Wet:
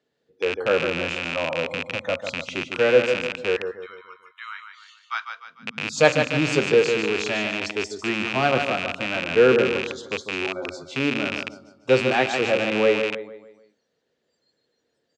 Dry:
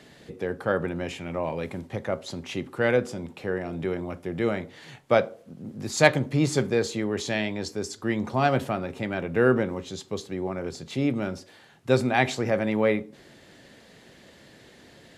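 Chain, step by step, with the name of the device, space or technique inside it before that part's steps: 3.56–5.3 steep high-pass 1000 Hz 48 dB/oct; spectral noise reduction 25 dB; feedback echo 0.149 s, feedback 41%, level -7 dB; car door speaker with a rattle (rattling part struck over -37 dBFS, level -13 dBFS; speaker cabinet 81–7400 Hz, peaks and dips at 110 Hz -8 dB, 190 Hz -5 dB, 470 Hz +9 dB, 1400 Hz +3 dB, 2100 Hz -4 dB)

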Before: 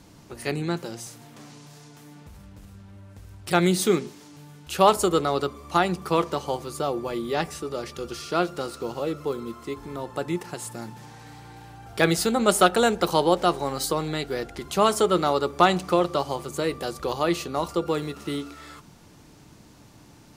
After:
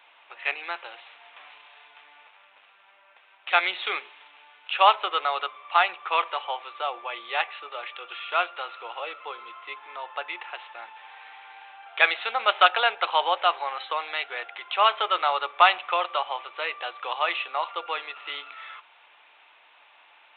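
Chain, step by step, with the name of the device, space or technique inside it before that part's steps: musical greeting card (downsampling 8000 Hz; HPF 740 Hz 24 dB/oct; bell 2500 Hz +7.5 dB 0.55 oct); gain +2.5 dB

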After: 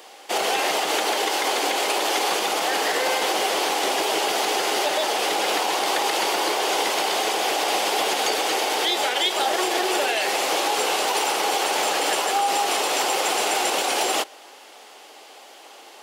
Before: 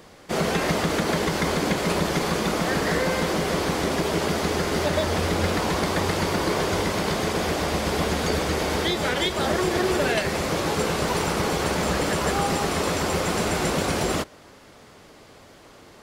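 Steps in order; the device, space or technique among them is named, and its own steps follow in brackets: laptop speaker (HPF 340 Hz 24 dB/oct; bell 800 Hz +11 dB 0.32 oct; bell 2900 Hz +7 dB 0.59 oct; limiter -14.5 dBFS, peak gain reduction 7.5 dB); 0.95–2.31 steep high-pass 210 Hz 96 dB/oct; high shelf 3800 Hz +8.5 dB

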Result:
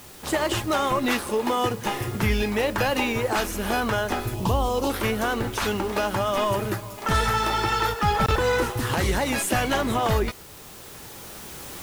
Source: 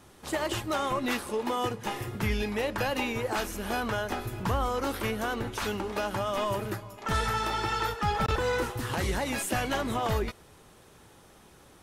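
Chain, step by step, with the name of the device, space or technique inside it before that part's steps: 4.34–4.9 band shelf 1700 Hz -16 dB 1 oct; cheap recorder with automatic gain (white noise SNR 23 dB; recorder AGC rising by 5 dB/s); gain +6 dB

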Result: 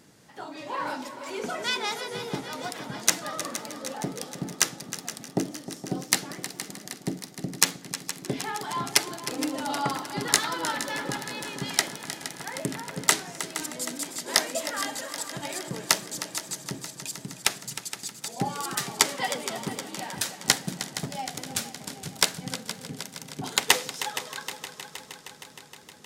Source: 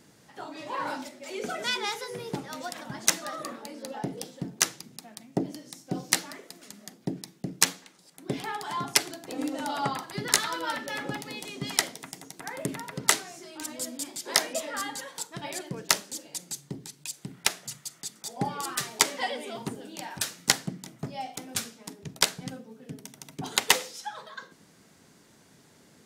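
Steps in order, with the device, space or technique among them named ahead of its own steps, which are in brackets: multi-head tape echo (multi-head echo 0.156 s, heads second and third, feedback 68%, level -13 dB; wow and flutter 25 cents); gain +1 dB

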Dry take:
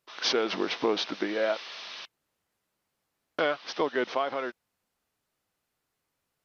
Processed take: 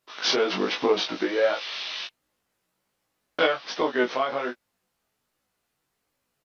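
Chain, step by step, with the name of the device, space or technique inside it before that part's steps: double-tracked vocal (doubler 16 ms -5 dB; chorus 1.3 Hz, delay 19.5 ms, depth 2.8 ms); 1.6–3.47 dynamic EQ 3100 Hz, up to +6 dB, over -50 dBFS, Q 0.96; gain +5.5 dB

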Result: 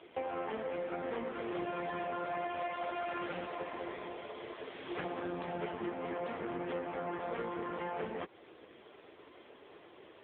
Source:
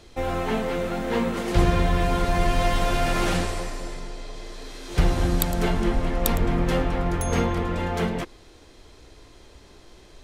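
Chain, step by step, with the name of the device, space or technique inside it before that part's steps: voicemail (BPF 330–3200 Hz; compressor 8:1, threshold -36 dBFS, peak gain reduction 15 dB; gain +2.5 dB; AMR-NB 5.9 kbps 8000 Hz)

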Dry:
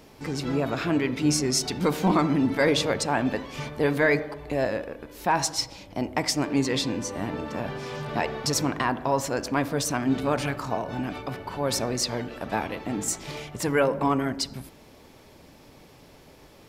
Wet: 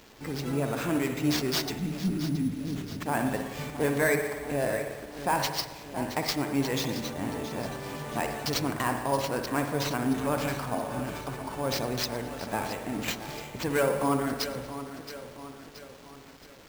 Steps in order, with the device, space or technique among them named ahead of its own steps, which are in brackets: 1.76–3.06 inverse Chebyshev band-stop 740–3300 Hz, stop band 60 dB; spring tank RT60 1.3 s, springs 57 ms, chirp 60 ms, DRR 5.5 dB; early 8-bit sampler (sample-rate reducer 10000 Hz, jitter 0%; bit-crush 8-bit); lo-fi delay 0.673 s, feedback 55%, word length 8-bit, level -12 dB; gain -4 dB

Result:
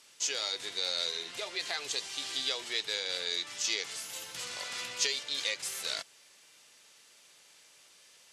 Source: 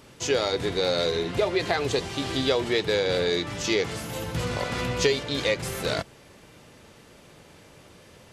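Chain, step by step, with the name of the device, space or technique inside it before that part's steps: piezo pickup straight into a mixer (LPF 8000 Hz 12 dB/oct; differentiator); gain +3.5 dB

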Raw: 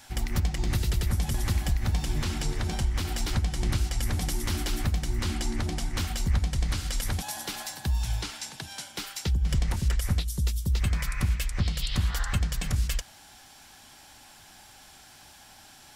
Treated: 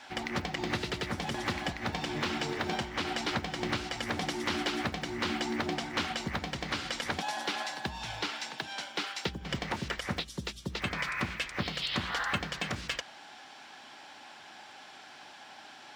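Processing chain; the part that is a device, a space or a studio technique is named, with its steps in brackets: early digital voice recorder (BPF 290–3500 Hz; block floating point 7-bit); gain +5 dB

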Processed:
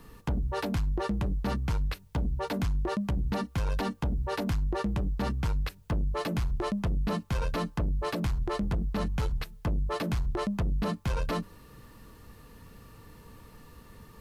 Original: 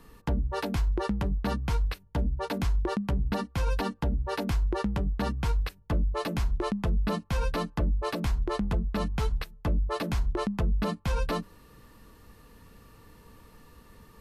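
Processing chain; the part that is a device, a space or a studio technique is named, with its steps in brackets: open-reel tape (soft clip -26.5 dBFS, distortion -13 dB; bell 120 Hz +3.5 dB 1.05 oct; white noise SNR 45 dB); gain +1.5 dB

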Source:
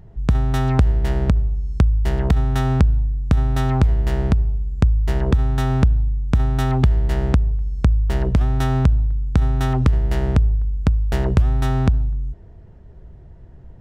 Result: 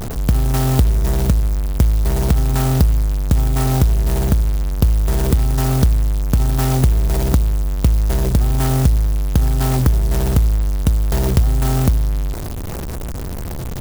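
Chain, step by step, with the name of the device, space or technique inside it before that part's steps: early CD player with a faulty converter (zero-crossing step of -20 dBFS; clock jitter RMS 0.11 ms)

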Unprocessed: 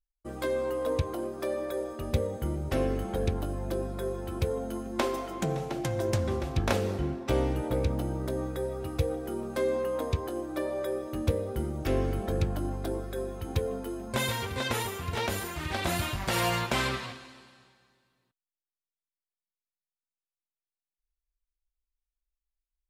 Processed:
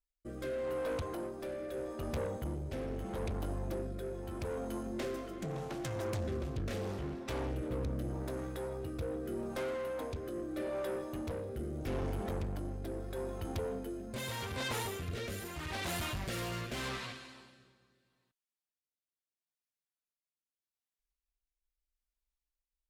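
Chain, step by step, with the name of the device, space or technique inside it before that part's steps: overdriven rotary cabinet (tube stage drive 32 dB, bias 0.35; rotary speaker horn 0.8 Hz)

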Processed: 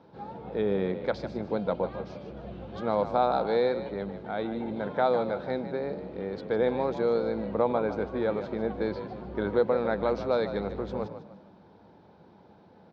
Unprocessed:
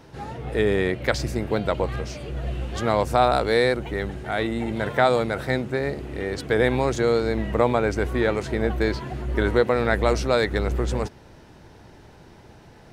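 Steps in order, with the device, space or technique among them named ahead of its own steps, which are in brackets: frequency-shifting delay pedal into a guitar cabinet (frequency-shifting echo 0.151 s, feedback 35%, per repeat +45 Hz, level -11 dB; speaker cabinet 110–3900 Hz, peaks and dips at 130 Hz -7 dB, 190 Hz +8 dB, 520 Hz +5 dB, 860 Hz +4 dB, 1900 Hz -10 dB, 2800 Hz -9 dB); gain -8 dB

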